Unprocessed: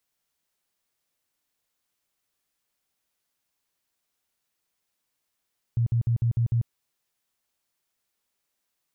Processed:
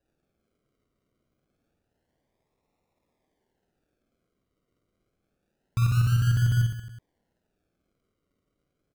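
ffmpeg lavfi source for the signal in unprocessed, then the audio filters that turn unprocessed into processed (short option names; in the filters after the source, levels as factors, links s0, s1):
-f lavfi -i "aevalsrc='0.106*sin(2*PI*117*mod(t,0.15))*lt(mod(t,0.15),11/117)':d=0.9:s=44100"
-filter_complex "[0:a]acrusher=samples=40:mix=1:aa=0.000001:lfo=1:lforange=24:lforate=0.27,asplit=2[s0][s1];[s1]aecho=0:1:50|110|182|268.4|372.1:0.631|0.398|0.251|0.158|0.1[s2];[s0][s2]amix=inputs=2:normalize=0"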